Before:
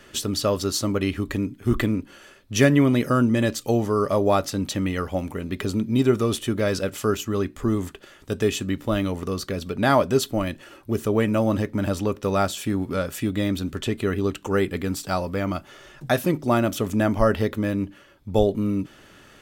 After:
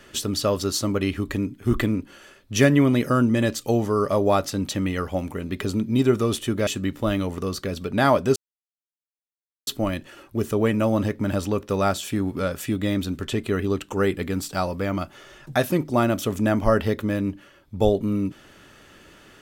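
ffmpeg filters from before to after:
-filter_complex "[0:a]asplit=3[a][b][c];[a]atrim=end=6.672[d];[b]atrim=start=8.518:end=10.21,asetpts=PTS-STARTPTS,afade=t=out:st=1.688:d=0.004:c=hsin,apad=pad_dur=1.31[e];[c]atrim=start=10.21,asetpts=PTS-STARTPTS,afade=t=in:d=0.004:c=hsin[f];[e][f]concat=n=2:v=0:a=1[g];[d][g]acrossfade=d=0.004:c1=hsin:c2=hsin"

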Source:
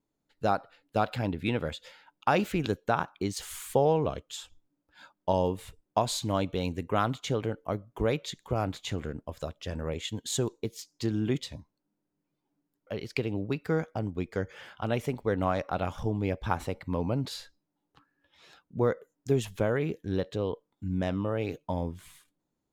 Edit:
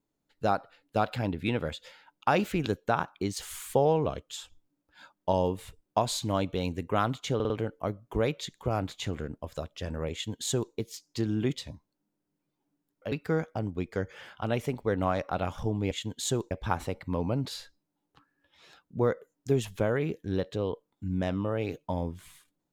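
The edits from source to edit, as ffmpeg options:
-filter_complex "[0:a]asplit=7[a][b][c][d][e][f][g];[a]atrim=end=7.402[h];[b]atrim=start=7.348:end=7.402[i];[c]atrim=start=7.348:end=7.402[j];[d]atrim=start=7.348:end=12.972[k];[e]atrim=start=13.518:end=16.312[l];[f]atrim=start=9.978:end=10.582[m];[g]atrim=start=16.308[n];[h][i]acrossfade=d=0.004:c1=hsin:c2=hsin[o];[o][j]acrossfade=d=0.004:c1=hsin:c2=hsin[p];[p][k]acrossfade=d=0.004:c1=hsin:c2=hsin[q];[q][l]acrossfade=d=0.004:c1=hsin:c2=hsin[r];[r][m]acrossfade=d=0.004:c1=hsin:c2=hsin[s];[s][n]acrossfade=d=0.004:c1=hsin:c2=hsin"

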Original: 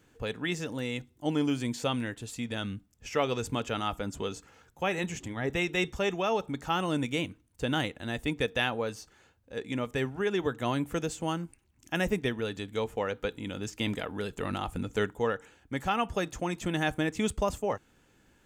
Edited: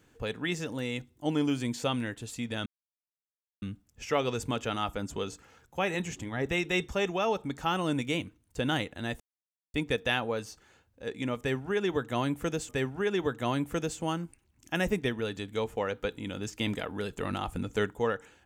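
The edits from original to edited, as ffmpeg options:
-filter_complex "[0:a]asplit=4[a][b][c][d];[a]atrim=end=2.66,asetpts=PTS-STARTPTS,afade=t=out:st=2.656:d=0.004:c=hsin,apad=pad_dur=0.96[e];[b]atrim=start=2.66:end=8.24,asetpts=PTS-STARTPTS,afade=t=in:d=0.004:c=hsin,afade=t=out:st=5.576:d=0.004:c=hsin,apad=pad_dur=0.54[f];[c]atrim=start=8.24:end=11.192,asetpts=PTS-STARTPTS,afade=t=in:d=0.004:c=hsin[g];[d]atrim=start=9.888[h];[e][f][g]concat=n=3:v=0:a=1[i];[i][h]acrossfade=d=0.004:c1=hsin:c2=hsin"

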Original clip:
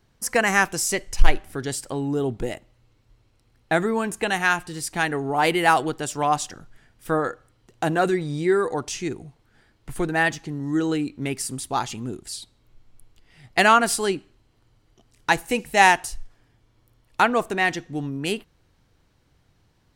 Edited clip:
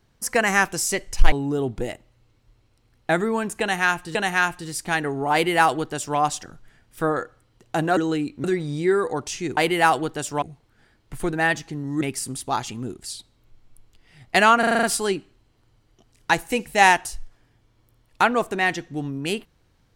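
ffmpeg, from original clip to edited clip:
-filter_complex "[0:a]asplit=14[a][b][c][d][e][f][g][h][i][j][k][l][m][n];[a]atrim=end=1.322[o];[b]atrim=start=1.938:end=4.772[p];[c]atrim=start=4.228:end=8.052[q];[d]atrim=start=10.768:end=11.242[r];[e]atrim=start=8.048:end=9.182[s];[f]atrim=start=5.408:end=6.262[t];[g]atrim=start=9.178:end=10.772[u];[h]atrim=start=11.238:end=13.862[v];[i]atrim=start=13.818:end=13.862[w];[j]atrim=start=13.818:end=13.862[x];[k]atrim=start=13.818:end=13.862[y];[l]atrim=start=13.818:end=13.862[z];[m]atrim=start=13.818:end=13.862[aa];[n]atrim=start=13.818[ab];[o][p]acrossfade=d=0.004:c1=hsin:c2=hsin[ac];[ac][q]acrossfade=d=0.004:c1=hsin:c2=hsin[ad];[ad][r]acrossfade=d=0.004:c1=hsin:c2=hsin[ae];[ae][s]acrossfade=d=0.004:c1=hsin:c2=hsin[af];[af][t]acrossfade=d=0.004:c1=hsin:c2=hsin[ag];[ag][u]acrossfade=d=0.004:c1=hsin:c2=hsin[ah];[ah][v]acrossfade=d=0.004:c1=hsin:c2=hsin[ai];[ai][w]acrossfade=d=0.004:c1=hsin:c2=hsin[aj];[aj][x]acrossfade=d=0.004:c1=hsin:c2=hsin[ak];[ak][y]acrossfade=d=0.004:c1=hsin:c2=hsin[al];[al][z]acrossfade=d=0.004:c1=hsin:c2=hsin[am];[am][aa]acrossfade=d=0.004:c1=hsin:c2=hsin[an];[an][ab]acrossfade=d=0.004:c1=hsin:c2=hsin"

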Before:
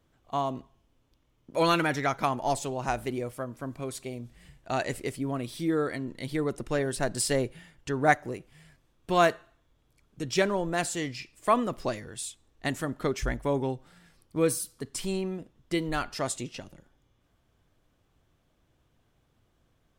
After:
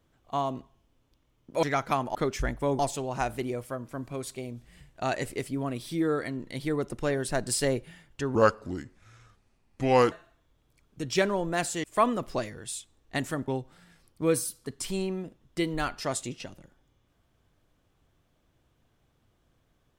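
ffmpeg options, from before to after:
-filter_complex "[0:a]asplit=8[a][b][c][d][e][f][g][h];[a]atrim=end=1.632[i];[b]atrim=start=1.948:end=2.472[j];[c]atrim=start=12.978:end=13.622[k];[d]atrim=start=2.468:end=8.034[l];[e]atrim=start=8.03:end=9.32,asetpts=PTS-STARTPTS,asetrate=32193,aresample=44100,atrim=end_sample=77930,asetpts=PTS-STARTPTS[m];[f]atrim=start=9.316:end=11.042[n];[g]atrim=start=11.338:end=12.982[o];[h]atrim=start=13.618[p];[i][j]acrossfade=d=0.004:c1=hsin:c2=hsin[q];[q][k]acrossfade=d=0.004:c1=hsin:c2=hsin[r];[r][l]acrossfade=d=0.004:c1=hsin:c2=hsin[s];[s][m]acrossfade=d=0.004:c1=hsin:c2=hsin[t];[t][n]acrossfade=d=0.004:c1=hsin:c2=hsin[u];[u][o]acrossfade=d=0.004:c1=hsin:c2=hsin[v];[v][p]acrossfade=d=0.004:c1=hsin:c2=hsin"

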